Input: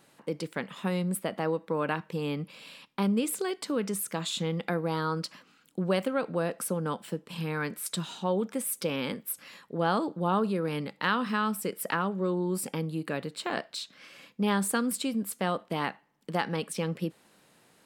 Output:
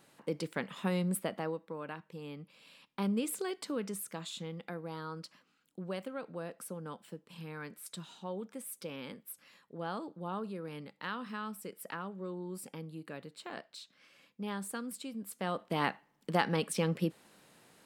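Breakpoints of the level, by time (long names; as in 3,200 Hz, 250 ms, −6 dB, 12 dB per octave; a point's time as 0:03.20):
0:01.20 −2.5 dB
0:01.79 −13 dB
0:02.52 −13 dB
0:03.08 −5.5 dB
0:03.61 −5.5 dB
0:04.57 −12 dB
0:15.13 −12 dB
0:15.86 0 dB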